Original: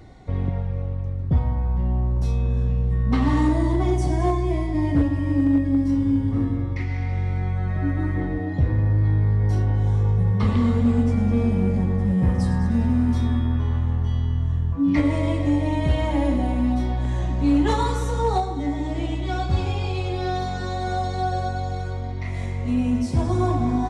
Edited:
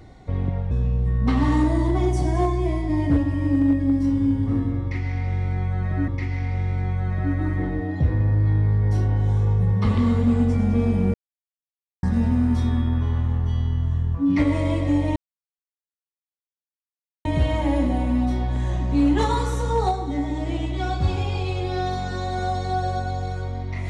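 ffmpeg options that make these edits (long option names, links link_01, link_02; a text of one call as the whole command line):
ffmpeg -i in.wav -filter_complex "[0:a]asplit=6[link_01][link_02][link_03][link_04][link_05][link_06];[link_01]atrim=end=0.712[link_07];[link_02]atrim=start=2.558:end=7.932[link_08];[link_03]atrim=start=6.658:end=11.72,asetpts=PTS-STARTPTS,afade=type=out:start_time=5.058:duration=0.004:curve=hsin[link_09];[link_04]atrim=start=11.72:end=12.61,asetpts=PTS-STARTPTS,volume=0[link_10];[link_05]atrim=start=12.61:end=15.74,asetpts=PTS-STARTPTS,afade=type=in:duration=0.004:curve=hsin,afade=type=out:start_time=3.126:duration=0.004:curve=hsin,apad=pad_dur=2.09[link_11];[link_06]atrim=start=15.74,asetpts=PTS-STARTPTS,afade=type=in:duration=0.004:curve=hsin[link_12];[link_07][link_08]acrossfade=duration=0.004:curve1=hsin:curve2=hsin[link_13];[link_09][link_10][link_11][link_12]concat=n=4:v=0:a=1[link_14];[link_13][link_14]acrossfade=duration=0.004:curve1=hsin:curve2=hsin" out.wav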